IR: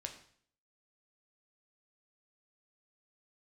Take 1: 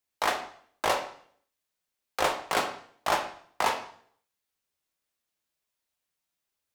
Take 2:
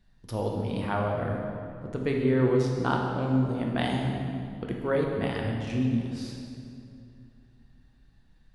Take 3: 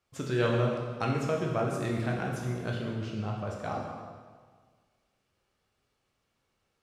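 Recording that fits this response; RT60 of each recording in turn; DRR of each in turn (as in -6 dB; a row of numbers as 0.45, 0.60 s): 1; 0.55, 2.5, 1.6 s; 3.5, -0.5, -1.5 dB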